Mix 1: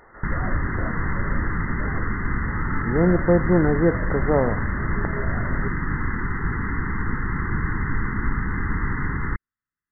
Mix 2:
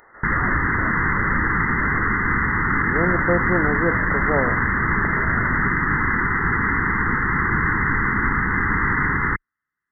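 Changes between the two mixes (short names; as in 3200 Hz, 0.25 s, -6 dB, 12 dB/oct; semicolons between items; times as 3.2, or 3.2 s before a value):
background +9.0 dB; master: add tilt +2.5 dB/oct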